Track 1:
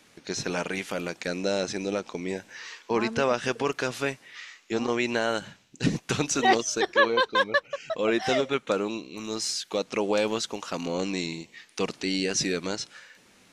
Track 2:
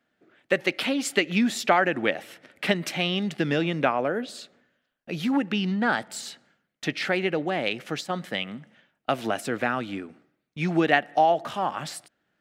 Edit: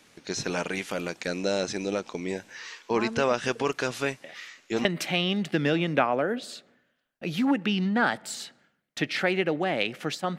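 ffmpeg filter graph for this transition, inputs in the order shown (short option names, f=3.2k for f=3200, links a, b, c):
-filter_complex "[1:a]asplit=2[a][b];[0:a]apad=whole_dur=10.38,atrim=end=10.38,atrim=end=4.852[c];[b]atrim=start=2.708:end=8.24[d];[a]atrim=start=2.1:end=2.71,asetpts=PTS-STARTPTS,volume=-15dB,afade=t=in:d=0.004:c=hsin,afade=t=out:st=0.606:d=0.004:c=hsin,adelay=4240[e];[c][d]acrossfade=d=0.004:c1=hsin:c2=hsin[f];[f][e]amix=inputs=2:normalize=0"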